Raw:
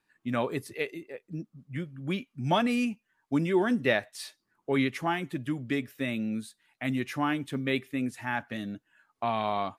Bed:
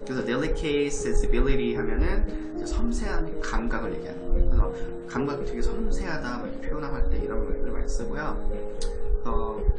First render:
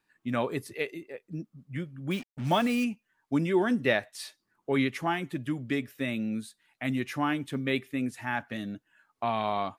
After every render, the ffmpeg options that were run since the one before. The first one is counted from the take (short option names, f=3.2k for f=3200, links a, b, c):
-filter_complex "[0:a]asettb=1/sr,asplit=3[a][b][c];[a]atrim=end=2.114[d];[b]atrim=start=2.11:end=2.84,asetpts=PTS-STARTPTS,afade=t=in:d=0.004:c=qsin,afade=t=out:st=0.726:d=0.004:c=qsin,acrusher=bits=6:mix=0:aa=0.5[e];[c]atrim=start=2.836[f];[d][e]acrossfade=d=0.004:c1=hsin:c2=qsin[g];[g][f]acrossfade=d=0.004:c1=qsin:c2=hsin"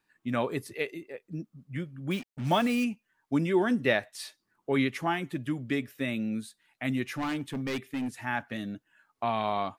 -filter_complex "[0:a]asettb=1/sr,asplit=3[a][b][c];[a]atrim=end=7.144[d];[b]atrim=start=7.14:end=8.21,asetpts=PTS-STARTPTS,afade=t=in:d=0.004:c=qsin,afade=t=out:st=1.066:d=0.004:c=qsin,volume=28.5dB,asoftclip=hard,volume=-28.5dB[e];[c]atrim=start=8.206[f];[d][e]acrossfade=d=0.004:c1=hsin:c2=qsin[g];[g][f]acrossfade=d=0.004:c1=qsin:c2=hsin"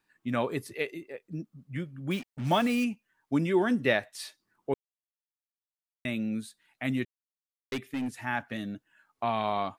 -filter_complex "[0:a]asplit=5[a][b][c][d][e];[a]atrim=end=4.74,asetpts=PTS-STARTPTS,afade=t=out:st=4.736:d=0.004:c=hsin[f];[b]atrim=start=4.74:end=6.05,asetpts=PTS-STARTPTS,volume=0[g];[c]atrim=start=6.05:end=7.05,asetpts=PTS-STARTPTS,afade=t=in:d=0.004:c=hsin,afade=t=out:st=0.996:d=0.004:c=hsin[h];[d]atrim=start=7.05:end=7.72,asetpts=PTS-STARTPTS,volume=0[i];[e]atrim=start=7.72,asetpts=PTS-STARTPTS,afade=t=in:d=0.004:c=hsin[j];[f][g][h][i][j]concat=n=5:v=0:a=1"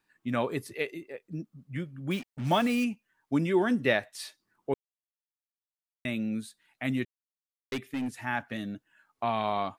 -af anull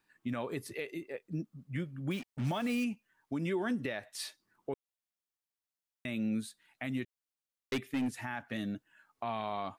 -af "acompressor=threshold=-27dB:ratio=6,alimiter=level_in=1.5dB:limit=-24dB:level=0:latency=1:release=153,volume=-1.5dB"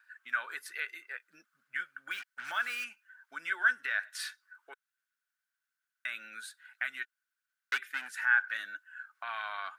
-af "highpass=f=1.5k:t=q:w=14,aphaser=in_gain=1:out_gain=1:delay=3.4:decay=0.21:speed=1.2:type=sinusoidal"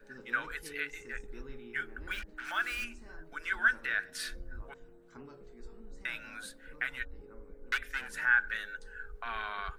-filter_complex "[1:a]volume=-23dB[a];[0:a][a]amix=inputs=2:normalize=0"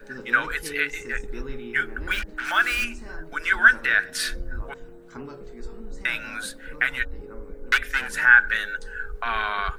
-af "volume=12dB"